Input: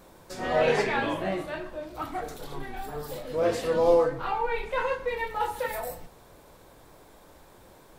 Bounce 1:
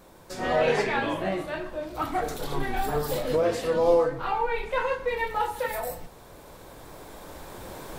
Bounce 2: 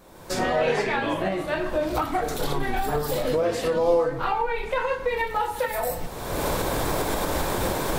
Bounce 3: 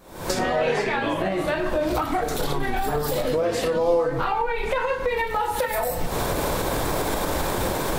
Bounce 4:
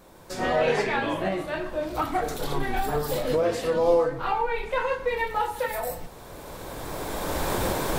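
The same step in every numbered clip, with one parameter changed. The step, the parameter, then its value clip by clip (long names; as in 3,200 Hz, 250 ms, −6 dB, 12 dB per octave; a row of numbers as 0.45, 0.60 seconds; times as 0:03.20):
camcorder AGC, rising by: 5.6, 36, 89, 14 dB per second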